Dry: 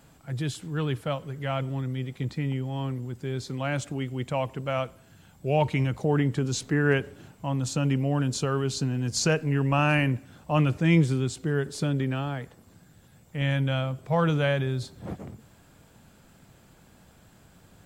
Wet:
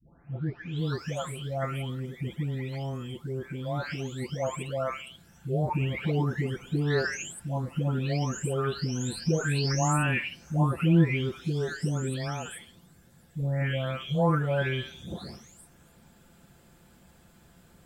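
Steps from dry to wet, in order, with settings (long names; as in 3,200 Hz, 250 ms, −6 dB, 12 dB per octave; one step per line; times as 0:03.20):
every frequency bin delayed by itself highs late, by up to 782 ms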